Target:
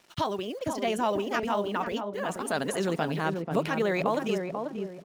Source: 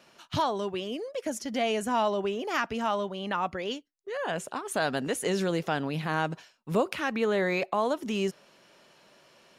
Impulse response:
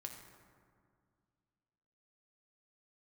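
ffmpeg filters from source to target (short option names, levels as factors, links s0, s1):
-filter_complex "[0:a]atempo=1.9,acrusher=bits=8:mix=0:aa=0.5,asplit=2[s0][s1];[s1]adelay=488,lowpass=f=830:p=1,volume=0.668,asplit=2[s2][s3];[s3]adelay=488,lowpass=f=830:p=1,volume=0.4,asplit=2[s4][s5];[s5]adelay=488,lowpass=f=830:p=1,volume=0.4,asplit=2[s6][s7];[s7]adelay=488,lowpass=f=830:p=1,volume=0.4,asplit=2[s8][s9];[s9]adelay=488,lowpass=f=830:p=1,volume=0.4[s10];[s0][s2][s4][s6][s8][s10]amix=inputs=6:normalize=0"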